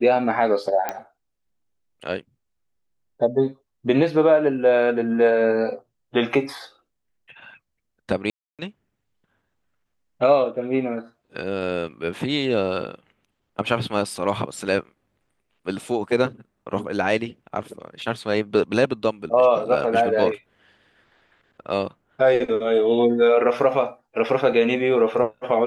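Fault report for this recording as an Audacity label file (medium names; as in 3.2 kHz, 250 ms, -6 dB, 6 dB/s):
0.890000	0.890000	pop -11 dBFS
8.300000	8.590000	dropout 287 ms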